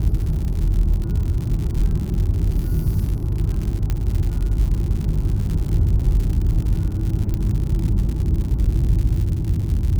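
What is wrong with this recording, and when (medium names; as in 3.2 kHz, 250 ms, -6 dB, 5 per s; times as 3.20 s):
crackle 130 per s -26 dBFS
3.90 s: pop -11 dBFS
7.34 s: pop -13 dBFS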